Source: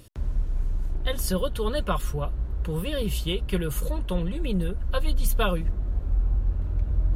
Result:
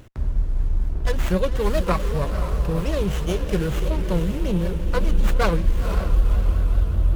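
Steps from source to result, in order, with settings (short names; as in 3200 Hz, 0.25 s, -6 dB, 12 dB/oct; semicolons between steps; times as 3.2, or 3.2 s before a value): diffused feedback echo 0.516 s, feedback 53%, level -8 dB; vibrato 5.2 Hz 100 cents; running maximum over 9 samples; gain +4.5 dB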